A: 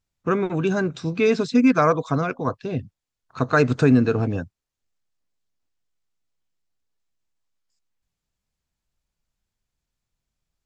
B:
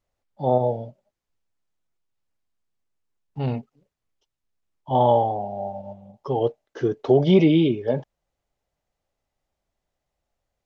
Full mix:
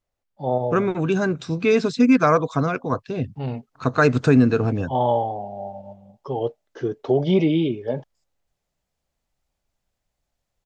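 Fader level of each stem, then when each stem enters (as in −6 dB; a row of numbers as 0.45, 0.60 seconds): +1.0, −2.5 decibels; 0.45, 0.00 seconds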